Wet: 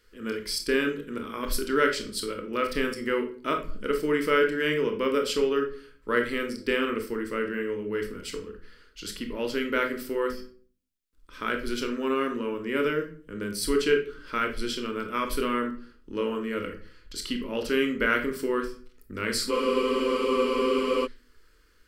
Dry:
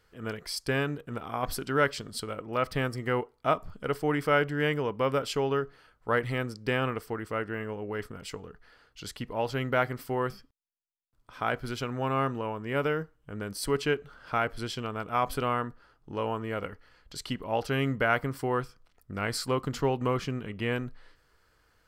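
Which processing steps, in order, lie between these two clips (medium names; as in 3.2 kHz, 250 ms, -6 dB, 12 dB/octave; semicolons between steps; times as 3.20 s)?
static phaser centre 310 Hz, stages 4; on a send at -4 dB: reverberation RT60 0.45 s, pre-delay 22 ms; on the sum: spectral freeze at 19.53 s, 1.53 s; trim +4 dB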